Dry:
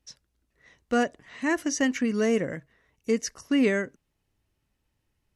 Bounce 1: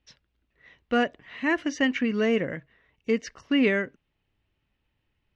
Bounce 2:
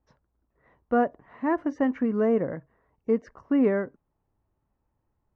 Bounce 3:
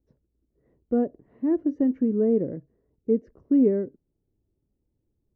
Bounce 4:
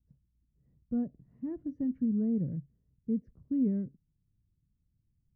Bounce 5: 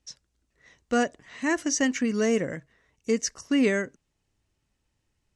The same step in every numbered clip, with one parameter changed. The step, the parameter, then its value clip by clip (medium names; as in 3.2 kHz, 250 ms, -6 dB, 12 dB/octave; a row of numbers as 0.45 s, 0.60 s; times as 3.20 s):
resonant low-pass, frequency: 3 kHz, 1 kHz, 390 Hz, 160 Hz, 7.7 kHz